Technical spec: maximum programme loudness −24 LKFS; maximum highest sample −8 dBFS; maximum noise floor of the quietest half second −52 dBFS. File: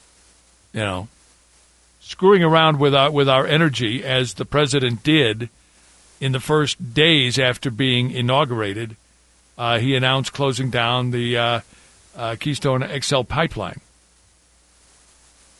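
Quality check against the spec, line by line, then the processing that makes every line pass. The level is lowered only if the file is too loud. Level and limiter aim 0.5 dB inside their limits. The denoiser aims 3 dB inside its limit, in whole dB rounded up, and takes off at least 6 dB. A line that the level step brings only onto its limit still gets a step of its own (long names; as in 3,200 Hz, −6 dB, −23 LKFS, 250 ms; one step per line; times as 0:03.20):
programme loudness −18.5 LKFS: out of spec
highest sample −2.5 dBFS: out of spec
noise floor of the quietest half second −56 dBFS: in spec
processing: level −6 dB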